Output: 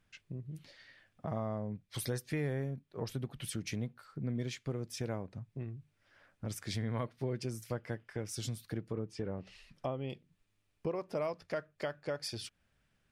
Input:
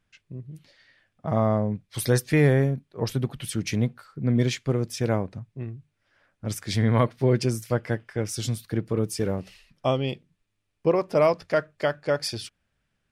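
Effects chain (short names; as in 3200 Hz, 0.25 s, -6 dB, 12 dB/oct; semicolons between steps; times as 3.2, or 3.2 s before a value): compressor 2.5:1, threshold -41 dBFS, peak gain reduction 17 dB; 8.8–10.1 treble ducked by the level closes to 1700 Hz, closed at -33 dBFS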